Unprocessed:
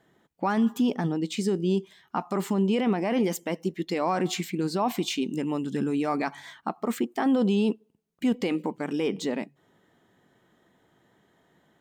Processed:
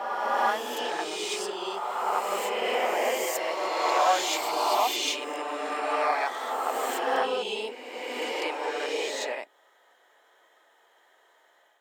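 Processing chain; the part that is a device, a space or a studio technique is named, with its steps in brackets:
ghost voice (reversed playback; convolution reverb RT60 2.7 s, pre-delay 19 ms, DRR −5.5 dB; reversed playback; high-pass filter 540 Hz 24 dB per octave)

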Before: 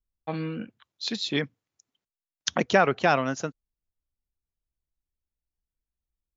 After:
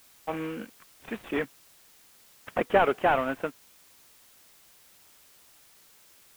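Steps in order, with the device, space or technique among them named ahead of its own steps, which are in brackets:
army field radio (band-pass filter 300–3,000 Hz; variable-slope delta modulation 16 kbit/s; white noise bed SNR 25 dB)
level +2 dB

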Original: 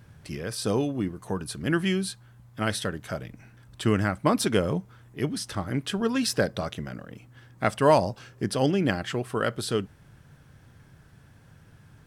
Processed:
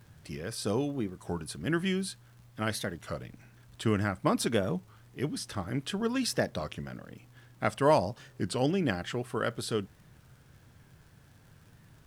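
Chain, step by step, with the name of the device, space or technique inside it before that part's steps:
warped LP (wow of a warped record 33 1/3 rpm, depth 160 cents; surface crackle; pink noise bed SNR 35 dB)
level −4.5 dB

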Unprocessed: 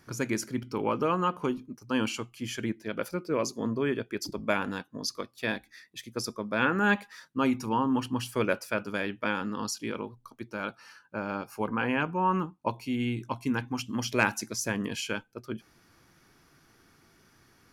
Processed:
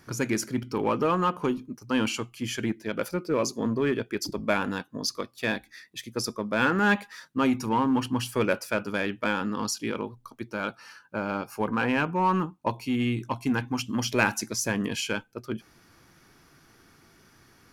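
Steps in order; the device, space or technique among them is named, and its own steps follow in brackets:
parallel distortion (in parallel at −5 dB: hard clipping −27 dBFS, distortion −8 dB)

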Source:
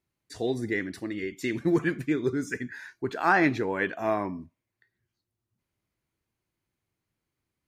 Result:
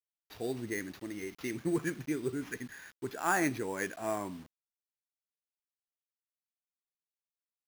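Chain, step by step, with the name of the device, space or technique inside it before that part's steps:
early 8-bit sampler (sample-rate reduction 8,400 Hz, jitter 0%; bit reduction 8 bits)
level −7.5 dB

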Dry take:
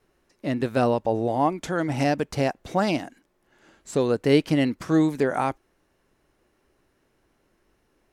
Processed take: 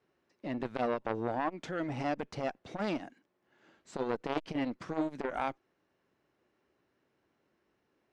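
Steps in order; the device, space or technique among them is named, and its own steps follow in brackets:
valve radio (band-pass filter 110–4,800 Hz; tube saturation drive 12 dB, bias 0.8; saturating transformer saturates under 1,100 Hz)
level −2.5 dB

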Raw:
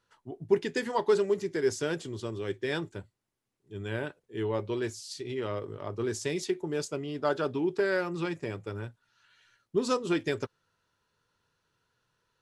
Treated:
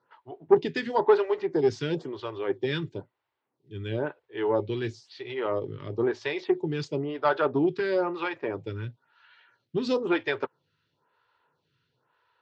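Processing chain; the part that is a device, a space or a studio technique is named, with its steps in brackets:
vibe pedal into a guitar amplifier (phaser with staggered stages 1 Hz; tube saturation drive 17 dB, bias 0.4; loudspeaker in its box 110–4,200 Hz, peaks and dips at 140 Hz +5 dB, 200 Hz −7 dB, 910 Hz +5 dB)
level +8.5 dB

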